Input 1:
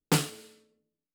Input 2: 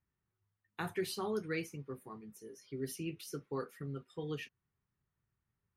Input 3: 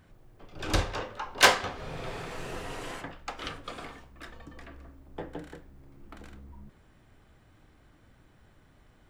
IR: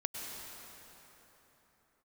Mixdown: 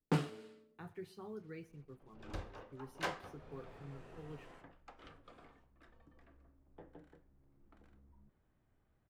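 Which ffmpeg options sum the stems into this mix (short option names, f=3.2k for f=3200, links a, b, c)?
-filter_complex "[0:a]aemphasis=mode=reproduction:type=50kf,alimiter=limit=-18.5dB:level=0:latency=1:release=335,volume=0dB[a];[1:a]lowshelf=f=150:g=8,acrusher=bits=8:mix=0:aa=0.5,volume=-12dB,asplit=2[b][c];[c]volume=-22dB[d];[2:a]adelay=1600,volume=-16.5dB[e];[d]aecho=0:1:124|248|372|496|620|744:1|0.46|0.212|0.0973|0.0448|0.0206[f];[a][b][e][f]amix=inputs=4:normalize=0,highshelf=f=2.5k:g=-11.5"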